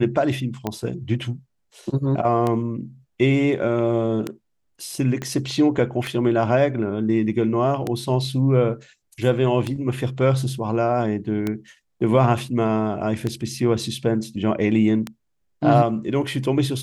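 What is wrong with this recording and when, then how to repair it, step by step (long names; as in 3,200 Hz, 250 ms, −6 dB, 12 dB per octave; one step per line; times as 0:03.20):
scratch tick 33 1/3 rpm −11 dBFS
0:05.22: click −15 dBFS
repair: click removal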